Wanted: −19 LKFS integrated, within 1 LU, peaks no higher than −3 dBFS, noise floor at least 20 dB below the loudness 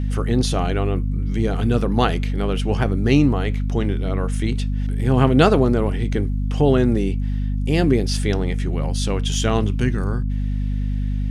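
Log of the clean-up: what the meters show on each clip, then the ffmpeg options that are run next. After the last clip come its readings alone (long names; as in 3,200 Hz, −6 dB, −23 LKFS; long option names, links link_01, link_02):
mains hum 50 Hz; hum harmonics up to 250 Hz; level of the hum −19 dBFS; integrated loudness −20.5 LKFS; sample peak −1.0 dBFS; target loudness −19.0 LKFS
→ -af "bandreject=frequency=50:width_type=h:width=6,bandreject=frequency=100:width_type=h:width=6,bandreject=frequency=150:width_type=h:width=6,bandreject=frequency=200:width_type=h:width=6,bandreject=frequency=250:width_type=h:width=6"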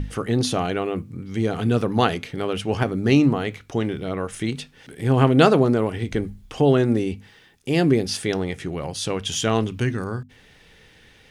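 mains hum none found; integrated loudness −22.0 LKFS; sample peak −1.5 dBFS; target loudness −19.0 LKFS
→ -af "volume=3dB,alimiter=limit=-3dB:level=0:latency=1"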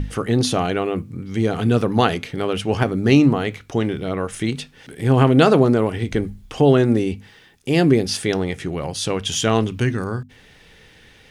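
integrated loudness −19.5 LKFS; sample peak −3.0 dBFS; background noise floor −50 dBFS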